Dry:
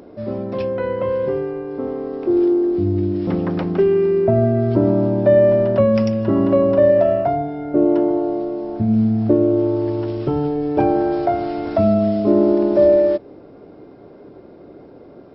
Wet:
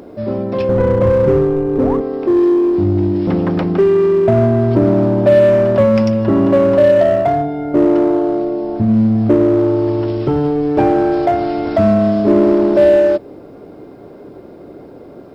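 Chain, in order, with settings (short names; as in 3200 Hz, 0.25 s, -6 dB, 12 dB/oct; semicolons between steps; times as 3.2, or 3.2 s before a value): 0.69–2.01 tilt -4 dB/oct; 1.75–1.97 painted sound rise 370–1200 Hz -30 dBFS; in parallel at -3 dB: overloaded stage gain 18.5 dB; on the sum: requantised 12-bit, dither triangular; gain +1 dB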